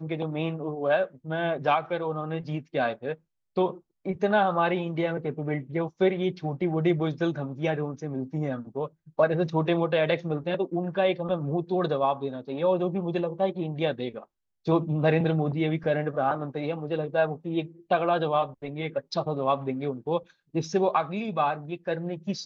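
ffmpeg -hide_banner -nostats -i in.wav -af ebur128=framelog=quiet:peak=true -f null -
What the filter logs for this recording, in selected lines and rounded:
Integrated loudness:
  I:         -27.8 LUFS
  Threshold: -37.9 LUFS
Loudness range:
  LRA:         1.9 LU
  Threshold: -47.8 LUFS
  LRA low:   -28.7 LUFS
  LRA high:  -26.7 LUFS
True peak:
  Peak:      -10.2 dBFS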